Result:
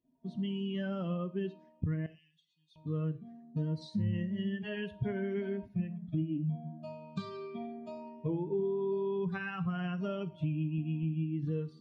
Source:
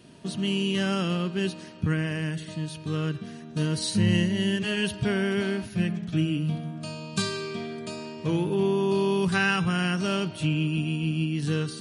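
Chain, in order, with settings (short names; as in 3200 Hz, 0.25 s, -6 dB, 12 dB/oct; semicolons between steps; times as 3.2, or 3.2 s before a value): per-bin expansion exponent 2; 2.06–2.76 inverse Chebyshev high-pass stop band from 1600 Hz, stop band 40 dB; compressor 6:1, threshold -35 dBFS, peak gain reduction 14 dB; tape spacing loss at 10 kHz 41 dB; non-linear reverb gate 0.14 s falling, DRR 11 dB; gain +5 dB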